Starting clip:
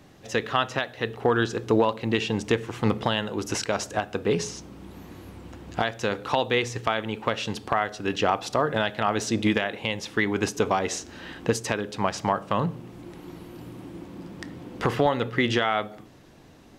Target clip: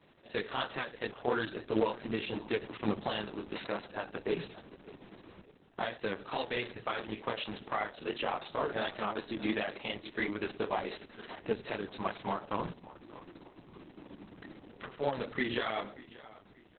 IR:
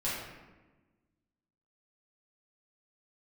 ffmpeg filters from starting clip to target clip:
-filter_complex "[0:a]lowpass=f=9100:w=0.5412,lowpass=f=9100:w=1.3066,asettb=1/sr,asplit=3[s0][s1][s2];[s0]atrim=end=5.414[s3];[s1]atrim=start=5.41:end=6.38,asetpts=PTS-STARTPTS,afade=t=in:d=0.004:c=qsin,afade=t=out:st=0.966:d=0.004:c=qsin,agate=range=0.282:threshold=0.0158:ratio=16:detection=peak[s4];[s2]atrim=start=6.376[s5];[s3][s4]acrossfade=d=0.004:c1=hsin:c2=qsin[s6];[s6][s5]acrossfade=d=0.004:c1=qsin:c2=hsin,highpass=160,asplit=3[s7][s8][s9];[s7]afade=t=out:st=14.48:d=0.02[s10];[s8]acompressor=threshold=0.0224:ratio=10,afade=t=in:st=14.48:d=0.02,afade=t=out:st=15:d=0.02[s11];[s9]afade=t=in:st=15:d=0.02[s12];[s10][s11][s12]amix=inputs=3:normalize=0,flanger=delay=18.5:depth=6.5:speed=2.8,acrusher=bits=3:mode=log:mix=0:aa=0.000001,asplit=3[s13][s14][s15];[s13]afade=t=out:st=7.99:d=0.02[s16];[s14]afreqshift=41,afade=t=in:st=7.99:d=0.02,afade=t=out:st=8.49:d=0.02[s17];[s15]afade=t=in:st=8.49:d=0.02[s18];[s16][s17][s18]amix=inputs=3:normalize=0,asplit=2[s19][s20];[s20]adelay=582,lowpass=f=4600:p=1,volume=0.126,asplit=2[s21][s22];[s22]adelay=582,lowpass=f=4600:p=1,volume=0.38,asplit=2[s23][s24];[s24]adelay=582,lowpass=f=4600:p=1,volume=0.38[s25];[s19][s21][s23][s25]amix=inputs=4:normalize=0,asplit=2[s26][s27];[1:a]atrim=start_sample=2205,afade=t=out:st=0.18:d=0.01,atrim=end_sample=8379[s28];[s27][s28]afir=irnorm=-1:irlink=0,volume=0.0708[s29];[s26][s29]amix=inputs=2:normalize=0,volume=0.531" -ar 48000 -c:a libopus -b:a 6k

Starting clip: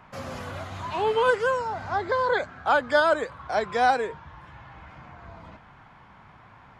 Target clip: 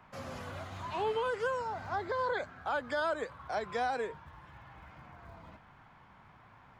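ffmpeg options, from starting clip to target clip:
-filter_complex "[0:a]acrossover=split=120[s0][s1];[s0]acrusher=bits=4:mode=log:mix=0:aa=0.000001[s2];[s1]alimiter=limit=0.133:level=0:latency=1:release=103[s3];[s2][s3]amix=inputs=2:normalize=0,volume=0.447"

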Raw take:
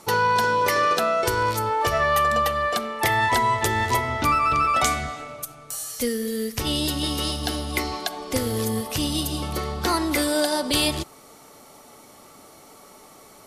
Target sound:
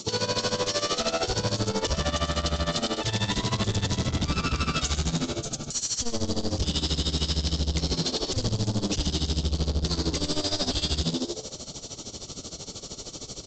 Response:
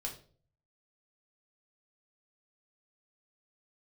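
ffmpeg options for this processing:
-filter_complex "[0:a]firequalizer=gain_entry='entry(110,0);entry(840,-29);entry(3000,-23)':delay=0.05:min_phase=1,asplit=2[s0][s1];[s1]highpass=f=720:p=1,volume=20,asoftclip=type=tanh:threshold=0.141[s2];[s0][s2]amix=inputs=2:normalize=0,lowpass=f=2600:p=1,volume=0.501,acrossover=split=510[s3][s4];[s3]asubboost=boost=8:cutoff=82[s5];[s4]aexciter=amount=5.1:drive=9:freq=3100[s6];[s5][s6]amix=inputs=2:normalize=0,asplit=7[s7][s8][s9][s10][s11][s12][s13];[s8]adelay=103,afreqshift=91,volume=0.562[s14];[s9]adelay=206,afreqshift=182,volume=0.26[s15];[s10]adelay=309,afreqshift=273,volume=0.119[s16];[s11]adelay=412,afreqshift=364,volume=0.055[s17];[s12]adelay=515,afreqshift=455,volume=0.0251[s18];[s13]adelay=618,afreqshift=546,volume=0.0116[s19];[s7][s14][s15][s16][s17][s18][s19]amix=inputs=7:normalize=0,alimiter=limit=0.126:level=0:latency=1:release=35,aresample=16000,asoftclip=type=tanh:threshold=0.0376,aresample=44100,tremolo=f=13:d=0.81,volume=2.66"

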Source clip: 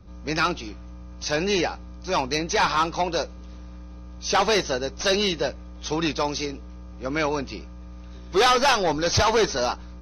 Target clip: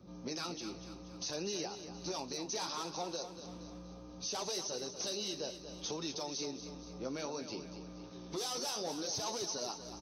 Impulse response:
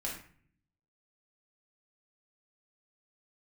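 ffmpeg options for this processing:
-filter_complex "[0:a]highpass=170,equalizer=f=1800:w=0.88:g=-10,acrossover=split=5000[s0][s1];[s0]acompressor=threshold=0.0141:ratio=6[s2];[s2][s1]amix=inputs=2:normalize=0,alimiter=level_in=1.88:limit=0.0631:level=0:latency=1:release=25,volume=0.531,flanger=delay=5.4:depth=9.8:regen=-50:speed=0.64:shape=sinusoidal,asplit=2[s3][s4];[s4]aecho=0:1:237|474|711|948|1185:0.299|0.149|0.0746|0.0373|0.0187[s5];[s3][s5]amix=inputs=2:normalize=0,volume=1.5"

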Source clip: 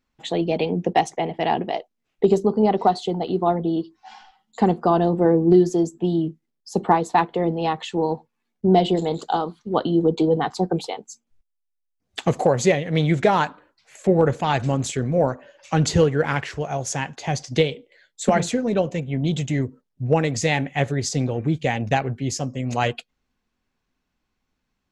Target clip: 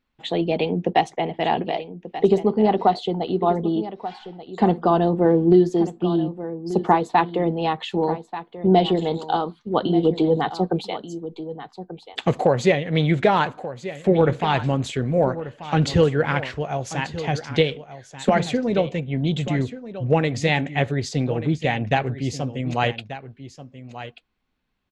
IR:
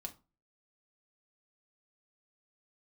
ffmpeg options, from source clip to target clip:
-af "highshelf=f=4800:t=q:w=1.5:g=-7,aecho=1:1:1185:0.211"

